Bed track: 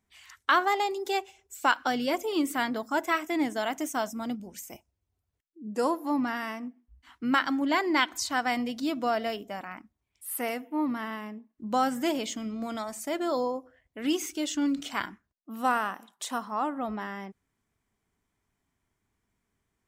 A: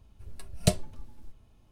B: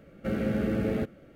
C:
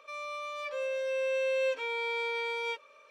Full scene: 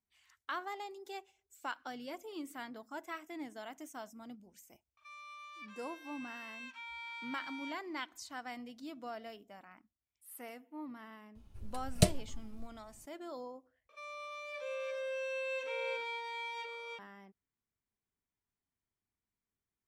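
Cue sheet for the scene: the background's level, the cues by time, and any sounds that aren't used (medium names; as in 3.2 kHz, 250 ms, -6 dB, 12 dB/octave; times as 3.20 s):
bed track -16.5 dB
4.97 s: add C -11 dB + steep high-pass 720 Hz 72 dB/octave
11.35 s: add A -2.5 dB
13.89 s: replace with C -7 dB + delay 340 ms -4.5 dB
not used: B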